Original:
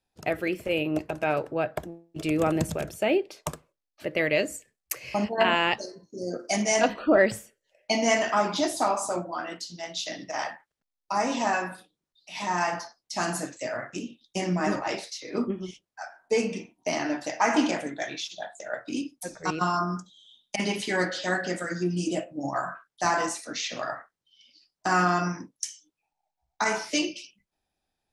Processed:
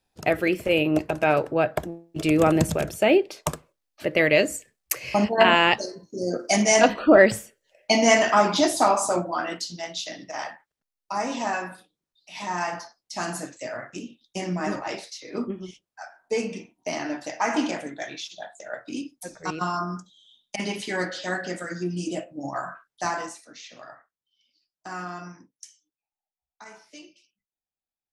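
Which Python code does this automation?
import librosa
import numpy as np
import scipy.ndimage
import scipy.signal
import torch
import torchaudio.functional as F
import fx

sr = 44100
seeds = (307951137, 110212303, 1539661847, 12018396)

y = fx.gain(x, sr, db=fx.line((9.67, 5.5), (10.13, -1.5), (23.03, -1.5), (23.51, -12.0), (25.69, -12.0), (26.63, -19.5)))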